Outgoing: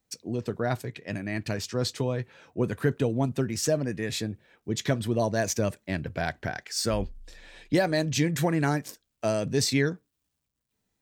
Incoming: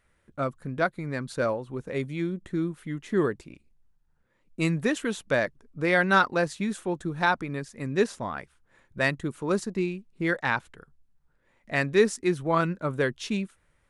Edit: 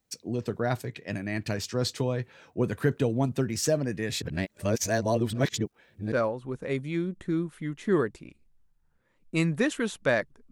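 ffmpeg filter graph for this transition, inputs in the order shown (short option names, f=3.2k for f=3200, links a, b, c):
-filter_complex "[0:a]apad=whole_dur=10.51,atrim=end=10.51,asplit=2[a][b];[a]atrim=end=4.222[c];[b]atrim=start=4.218:end=6.122,asetpts=PTS-STARTPTS,areverse[d];[1:a]atrim=start=1.368:end=5.76[e];[c][d]acrossfade=d=0.004:c1=hsin:c2=hsin[f];[f][e]acrossfade=d=0.004:c1=hsin:c2=hsin"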